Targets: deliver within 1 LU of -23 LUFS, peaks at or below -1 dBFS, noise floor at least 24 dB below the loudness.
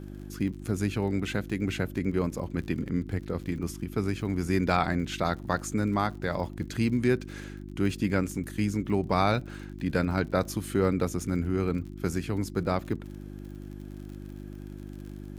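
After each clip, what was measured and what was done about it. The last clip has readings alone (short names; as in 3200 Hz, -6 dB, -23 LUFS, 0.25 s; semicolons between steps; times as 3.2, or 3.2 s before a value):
ticks 51/s; hum 50 Hz; harmonics up to 350 Hz; hum level -39 dBFS; loudness -29.5 LUFS; peak -9.5 dBFS; loudness target -23.0 LUFS
-> de-click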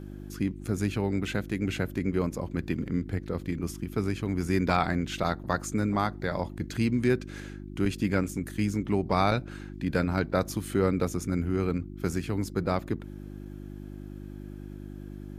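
ticks 0.065/s; hum 50 Hz; harmonics up to 350 Hz; hum level -39 dBFS
-> de-hum 50 Hz, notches 7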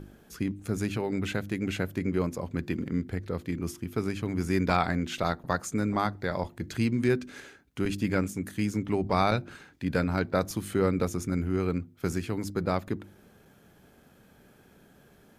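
hum none; loudness -30.0 LUFS; peak -9.5 dBFS; loudness target -23.0 LUFS
-> gain +7 dB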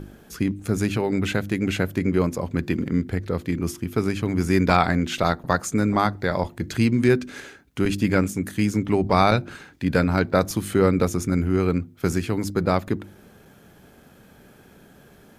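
loudness -23.0 LUFS; peak -2.5 dBFS; noise floor -52 dBFS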